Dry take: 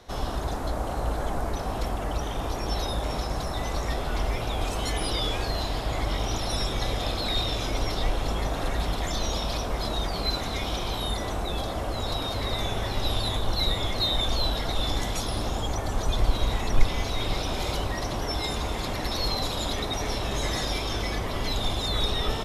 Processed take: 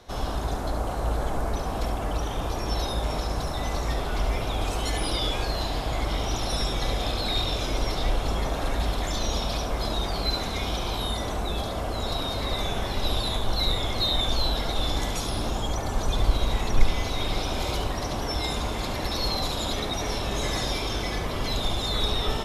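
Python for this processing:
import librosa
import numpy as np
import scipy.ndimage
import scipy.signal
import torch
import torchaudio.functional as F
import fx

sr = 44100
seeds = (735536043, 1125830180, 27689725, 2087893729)

y = fx.notch(x, sr, hz=1900.0, q=28.0)
y = y + 10.0 ** (-7.5 / 20.0) * np.pad(y, (int(71 * sr / 1000.0), 0))[:len(y)]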